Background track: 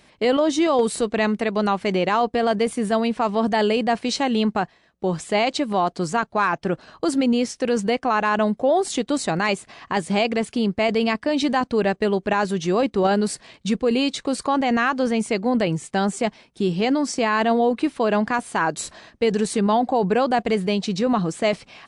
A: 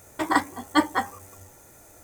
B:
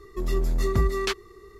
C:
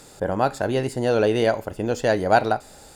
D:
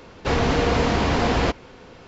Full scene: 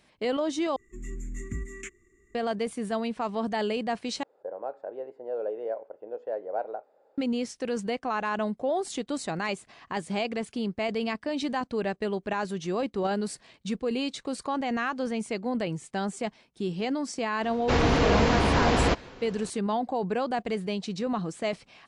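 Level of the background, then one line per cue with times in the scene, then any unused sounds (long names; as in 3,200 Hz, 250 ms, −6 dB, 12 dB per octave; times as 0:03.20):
background track −9 dB
0:00.76: overwrite with B −12.5 dB + drawn EQ curve 140 Hz 0 dB, 280 Hz +8 dB, 680 Hz −28 dB, 1,000 Hz −20 dB, 2,100 Hz +7 dB, 3,100 Hz −7 dB, 4,500 Hz −27 dB, 7,100 Hz +14 dB, 12,000 Hz −13 dB
0:04.23: overwrite with C −5 dB + four-pole ladder band-pass 590 Hz, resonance 50%
0:17.43: mix in D −2 dB
not used: A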